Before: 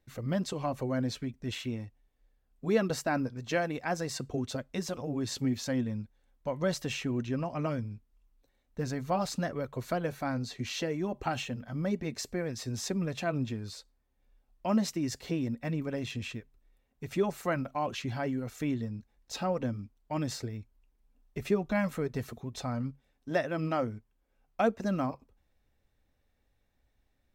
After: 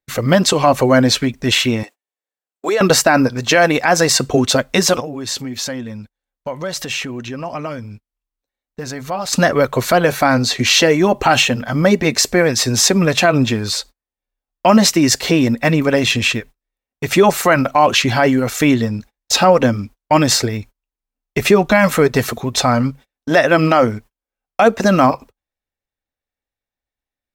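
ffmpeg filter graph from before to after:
ffmpeg -i in.wav -filter_complex "[0:a]asettb=1/sr,asplit=3[link_01][link_02][link_03];[link_01]atrim=end=1.834[link_04];[link_02]atrim=start=1.83:end=2.81,asetpts=PTS-STARTPTS,afade=type=in:duration=0.004:curve=qsin,afade=type=out:start_time=0.976:duration=0.004:curve=qsin,highpass=frequency=320:width=0.5412,highpass=frequency=320:width=1.3066,equalizer=frequency=7600:width=4.1:gain=7.5,acompressor=threshold=-34dB:ratio=10:attack=3.2:release=140:knee=1:detection=peak[link_05];[link_03]atrim=start=2.806[link_06];[link_04][link_05]acrossfade=duration=0.004:curve1=hsin:curve2=qsin[link_07];[link_07][link_06]acrossfade=duration=0.004:curve1=qsin:curve2=hsin,asettb=1/sr,asplit=3[link_08][link_09][link_10];[link_08]atrim=end=5.004[link_11];[link_09]atrim=start=5:end=9.33,asetpts=PTS-STARTPTS,afade=type=in:duration=0.004:curve=qsin,afade=type=out:start_time=4.326:duration=0.004:curve=qsin,acompressor=threshold=-49dB:ratio=2.5:attack=3.2:release=140:knee=1:detection=peak,asoftclip=type=hard:threshold=-35dB[link_12];[link_10]atrim=start=9.326[link_13];[link_11][link_12]acrossfade=duration=0.004:curve1=hsin:curve2=qsin[link_14];[link_14][link_13]acrossfade=duration=0.004:curve1=qsin:curve2=hsin,lowshelf=frequency=370:gain=-11,agate=range=-34dB:threshold=-59dB:ratio=16:detection=peak,alimiter=level_in=26.5dB:limit=-1dB:release=50:level=0:latency=1,volume=-1dB" out.wav

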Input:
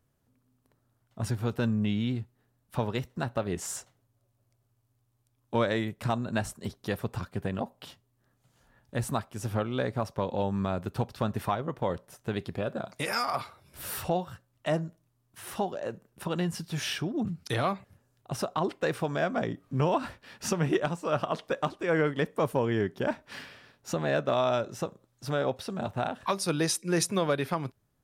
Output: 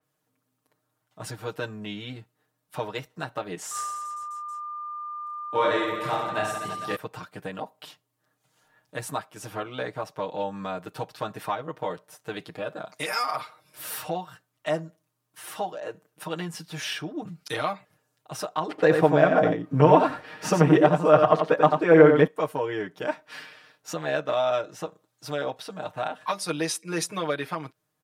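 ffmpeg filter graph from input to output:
ffmpeg -i in.wav -filter_complex "[0:a]asettb=1/sr,asplit=3[link_01][link_02][link_03];[link_01]atrim=end=3.714[link_04];[link_02]atrim=start=3.71:end=6.96,asetpts=PTS-STARTPTS,afade=type=in:duration=0.004:curve=qsin,afade=type=out:start_time=3.246:duration=0.004:curve=qsin,aeval=exprs='val(0)+0.0112*sin(2*PI*1200*n/s)':channel_layout=same,aecho=1:1:30|67.5|114.4|173|246.2|337.8|452.2|595.3|774.1:0.794|0.631|0.501|0.398|0.316|0.251|0.2|0.158|0.126,atrim=end_sample=143325[link_05];[link_03]atrim=start=6.956[link_06];[link_04][link_05]acrossfade=duration=0.004:curve1=hsin:curve2=qsin[link_07];[link_07][link_06]acrossfade=duration=0.004:curve1=qsin:curve2=hsin,asettb=1/sr,asplit=3[link_08][link_09][link_10];[link_08]atrim=end=18.694[link_11];[link_09]atrim=start=18.69:end=22.27,asetpts=PTS-STARTPTS,afade=type=in:duration=0.004:curve=qsin,afade=type=out:start_time=3.576:duration=0.004:curve=qsin,tiltshelf=frequency=1500:gain=6.5,acontrast=50,aecho=1:1:90:0.501,atrim=end_sample=157878[link_12];[link_10]atrim=start=22.266[link_13];[link_11][link_12]acrossfade=duration=0.004:curve1=hsin:curve2=qsin[link_14];[link_14][link_13]acrossfade=duration=0.004:curve1=qsin:curve2=hsin,highpass=frequency=500:poles=1,aecho=1:1:6.5:0.94,adynamicequalizer=threshold=0.00447:dfrequency=3800:dqfactor=0.7:tfrequency=3800:tqfactor=0.7:attack=5:release=100:ratio=0.375:range=2.5:mode=cutabove:tftype=highshelf" out.wav

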